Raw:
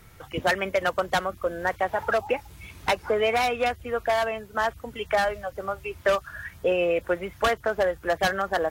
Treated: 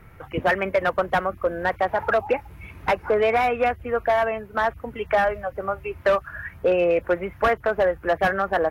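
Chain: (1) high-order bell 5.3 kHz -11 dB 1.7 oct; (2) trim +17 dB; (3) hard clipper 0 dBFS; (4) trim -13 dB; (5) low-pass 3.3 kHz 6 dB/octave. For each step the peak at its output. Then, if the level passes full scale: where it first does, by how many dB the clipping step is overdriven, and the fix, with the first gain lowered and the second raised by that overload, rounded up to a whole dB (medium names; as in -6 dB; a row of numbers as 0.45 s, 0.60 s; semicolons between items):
-11.0 dBFS, +6.0 dBFS, 0.0 dBFS, -13.0 dBFS, -13.0 dBFS; step 2, 6.0 dB; step 2 +11 dB, step 4 -7 dB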